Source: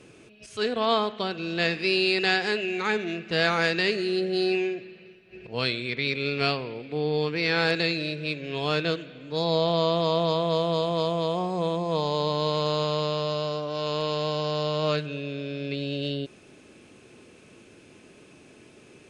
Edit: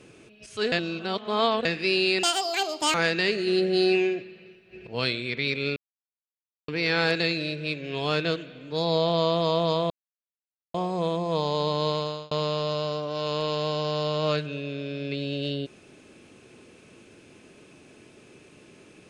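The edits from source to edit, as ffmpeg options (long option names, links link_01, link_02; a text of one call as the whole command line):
ffmpeg -i in.wav -filter_complex "[0:a]asplit=12[link_01][link_02][link_03][link_04][link_05][link_06][link_07][link_08][link_09][link_10][link_11][link_12];[link_01]atrim=end=0.722[link_13];[link_02]atrim=start=0.718:end=1.652,asetpts=PTS-STARTPTS,areverse[link_14];[link_03]atrim=start=1.648:end=2.234[link_15];[link_04]atrim=start=2.23:end=3.54,asetpts=PTS-STARTPTS,asetrate=81144,aresample=44100,atrim=end_sample=31397,asetpts=PTS-STARTPTS[link_16];[link_05]atrim=start=3.536:end=4.072[link_17];[link_06]atrim=start=4.068:end=4.822,asetpts=PTS-STARTPTS,volume=3dB[link_18];[link_07]atrim=start=4.818:end=6.36,asetpts=PTS-STARTPTS,afade=type=out:start_time=1.538:duration=0.004:curve=hsin[link_19];[link_08]atrim=start=6.36:end=7.28,asetpts=PTS-STARTPTS,volume=0[link_20];[link_09]atrim=start=7.28:end=10.5,asetpts=PTS-STARTPTS,afade=type=in:duration=0.004:curve=hsin,afade=type=out:start_time=3.216:duration=0.004:curve=hsin[link_21];[link_10]atrim=start=10.5:end=11.34,asetpts=PTS-STARTPTS,volume=0[link_22];[link_11]atrim=start=11.34:end=12.91,asetpts=PTS-STARTPTS,afade=type=in:duration=0.004:curve=hsin,afade=type=out:start_time=1.16:duration=0.41[link_23];[link_12]atrim=start=12.91,asetpts=PTS-STARTPTS,afade=type=in:duration=0.004:curve=hsin[link_24];[link_13][link_14]acrossfade=duration=0.004:curve1=hsin:curve2=hsin[link_25];[link_25][link_15]acrossfade=duration=0.004:curve1=hsin:curve2=hsin[link_26];[link_26][link_16]acrossfade=duration=0.004:curve1=hsin:curve2=hsin[link_27];[link_27][link_17]acrossfade=duration=0.004:curve1=hsin:curve2=hsin[link_28];[link_28][link_18]acrossfade=duration=0.004:curve1=hsin:curve2=hsin[link_29];[link_19][link_20][link_21][link_22][link_23][link_24]concat=n=6:v=0:a=1[link_30];[link_29][link_30]acrossfade=duration=0.004:curve1=hsin:curve2=hsin" out.wav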